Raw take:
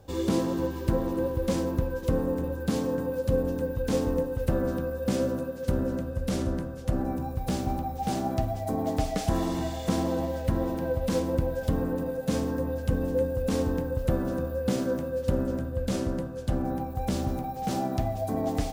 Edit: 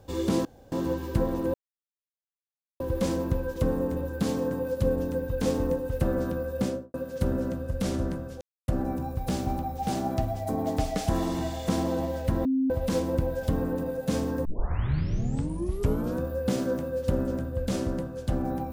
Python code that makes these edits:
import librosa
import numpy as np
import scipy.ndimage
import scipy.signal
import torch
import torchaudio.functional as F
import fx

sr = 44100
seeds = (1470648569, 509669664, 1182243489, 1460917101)

y = fx.studio_fade_out(x, sr, start_s=5.04, length_s=0.37)
y = fx.edit(y, sr, fx.insert_room_tone(at_s=0.45, length_s=0.27),
    fx.insert_silence(at_s=1.27, length_s=1.26),
    fx.insert_silence(at_s=6.88, length_s=0.27),
    fx.bleep(start_s=10.65, length_s=0.25, hz=264.0, db=-21.5),
    fx.tape_start(start_s=12.65, length_s=1.77), tone=tone)